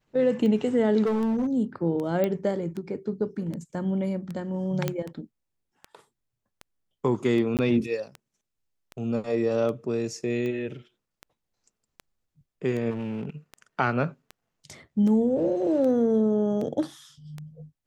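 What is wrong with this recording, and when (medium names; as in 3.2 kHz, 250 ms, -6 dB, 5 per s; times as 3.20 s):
tick 78 rpm -23 dBFS
1.05–1.47 s: clipped -22 dBFS
2.24 s: pop -14 dBFS
4.88 s: pop -12 dBFS
7.57–7.59 s: dropout 18 ms
12.90–13.30 s: clipped -28 dBFS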